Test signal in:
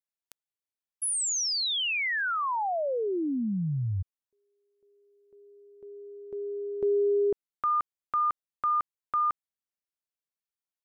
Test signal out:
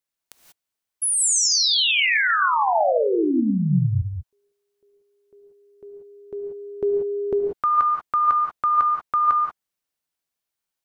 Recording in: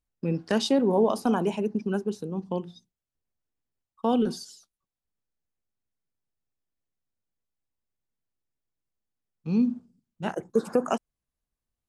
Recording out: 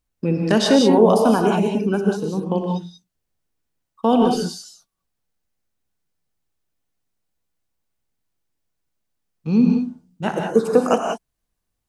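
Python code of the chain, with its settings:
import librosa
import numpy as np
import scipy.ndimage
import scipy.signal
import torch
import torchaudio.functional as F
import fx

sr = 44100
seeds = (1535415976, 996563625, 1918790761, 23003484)

y = fx.rev_gated(x, sr, seeds[0], gate_ms=210, shape='rising', drr_db=1.5)
y = F.gain(torch.from_numpy(y), 7.0).numpy()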